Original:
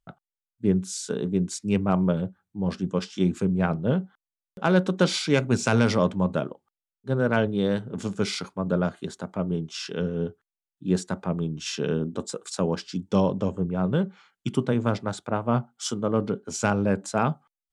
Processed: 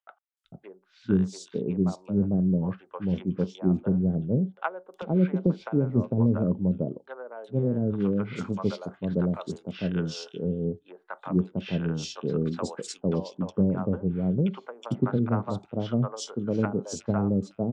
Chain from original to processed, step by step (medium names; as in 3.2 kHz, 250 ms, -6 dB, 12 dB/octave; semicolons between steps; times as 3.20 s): low-pass that closes with the level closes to 410 Hz, closed at -18.5 dBFS; three bands offset in time mids, highs, lows 370/450 ms, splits 630/3100 Hz